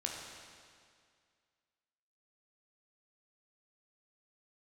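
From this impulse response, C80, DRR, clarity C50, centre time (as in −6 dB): 3.0 dB, −1.0 dB, 1.5 dB, 89 ms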